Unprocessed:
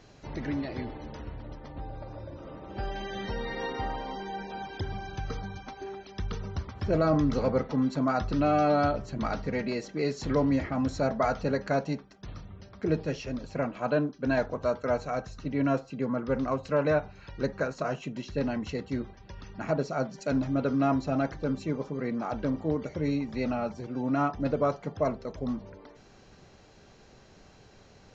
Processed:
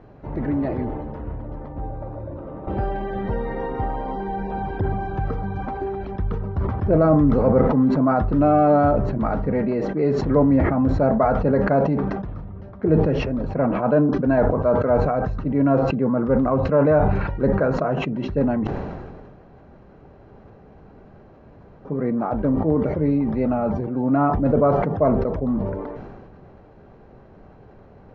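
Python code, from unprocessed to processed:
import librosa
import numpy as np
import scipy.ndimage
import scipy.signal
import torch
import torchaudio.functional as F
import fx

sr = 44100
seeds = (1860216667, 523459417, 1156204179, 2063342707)

y = fx.band_squash(x, sr, depth_pct=100, at=(2.67, 6.16))
y = fx.edit(y, sr, fx.room_tone_fill(start_s=18.67, length_s=3.18), tone=tone)
y = scipy.signal.sosfilt(scipy.signal.butter(2, 1100.0, 'lowpass', fs=sr, output='sos'), y)
y = fx.sustainer(y, sr, db_per_s=32.0)
y = F.gain(torch.from_numpy(y), 8.5).numpy()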